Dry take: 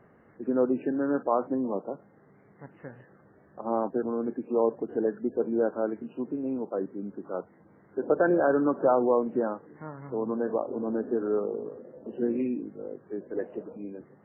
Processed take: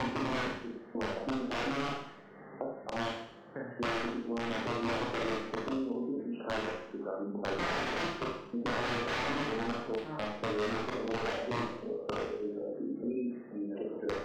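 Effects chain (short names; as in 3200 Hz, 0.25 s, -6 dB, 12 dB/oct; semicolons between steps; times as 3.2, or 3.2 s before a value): slices in reverse order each 0.237 s, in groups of 4; spectral gate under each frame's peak -30 dB strong; bell 71 Hz -13.5 dB 2.2 oct; wrapped overs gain 23 dB; air absorption 170 m; Schroeder reverb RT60 0.56 s, combs from 26 ms, DRR -2.5 dB; three-band squash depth 70%; gain -6 dB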